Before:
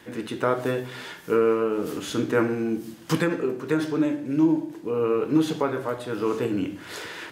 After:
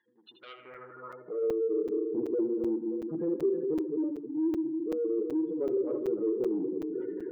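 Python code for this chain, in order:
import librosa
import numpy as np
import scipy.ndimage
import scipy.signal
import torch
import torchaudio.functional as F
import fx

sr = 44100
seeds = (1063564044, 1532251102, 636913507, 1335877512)

y = fx.reverse_delay_fb(x, sr, ms=156, feedback_pct=75, wet_db=-9)
y = fx.spec_gate(y, sr, threshold_db=-10, keep='strong')
y = fx.low_shelf(y, sr, hz=440.0, db=3.0)
y = y + 0.34 * np.pad(y, (int(5.6 * sr / 1000.0), 0))[:len(y)]
y = fx.rider(y, sr, range_db=4, speed_s=0.5)
y = 10.0 ** (-19.0 / 20.0) * np.tanh(y / 10.0 ** (-19.0 / 20.0))
y = fx.air_absorb(y, sr, metres=160.0)
y = fx.echo_banded(y, sr, ms=79, feedback_pct=72, hz=1900.0, wet_db=-10.5)
y = fx.filter_sweep_bandpass(y, sr, from_hz=6800.0, to_hz=390.0, start_s=0.13, end_s=1.61, q=3.5)
y = fx.buffer_crackle(y, sr, first_s=0.74, period_s=0.38, block=256, kind='zero')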